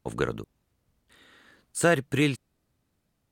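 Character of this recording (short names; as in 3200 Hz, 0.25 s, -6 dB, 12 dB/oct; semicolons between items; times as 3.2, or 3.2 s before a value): noise floor -76 dBFS; spectral tilt -5.0 dB/oct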